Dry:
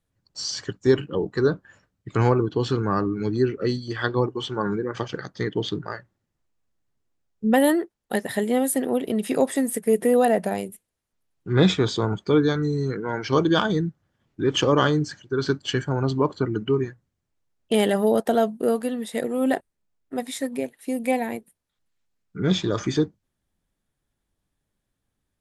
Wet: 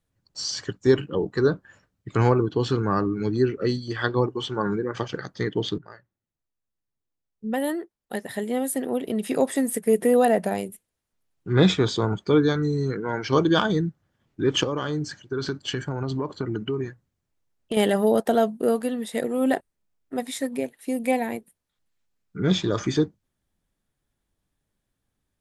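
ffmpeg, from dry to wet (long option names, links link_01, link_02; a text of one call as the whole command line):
ffmpeg -i in.wav -filter_complex "[0:a]asettb=1/sr,asplit=3[link_01][link_02][link_03];[link_01]atrim=end=14.634[link_04];[link_02]atrim=start=14.63:end=17.77,asetpts=PTS-STARTPTS,afade=type=in:duration=0.004:curve=qsin,afade=type=out:start_time=3.136:duration=0.004:curve=qsin,acompressor=threshold=-23dB:ratio=5:attack=3.2:release=140:knee=1:detection=peak[link_05];[link_03]atrim=start=17.766[link_06];[link_04][link_05]acrossfade=duration=0.004:curve1=hsin:curve2=qsin[link_07];[link_07][link_06]acrossfade=duration=0.004:curve1=qsin:curve2=hsin,asplit=2[link_08][link_09];[link_08]atrim=end=5.78,asetpts=PTS-STARTPTS,afade=type=out:start_time=5.776:duration=0.004:curve=hsin:silence=0.237137[link_10];[link_09]atrim=start=5.78,asetpts=PTS-STARTPTS,afade=type=in:duration=3.96:curve=qua:silence=0.237137[link_11];[link_10][link_11]concat=n=2:v=0:a=1" out.wav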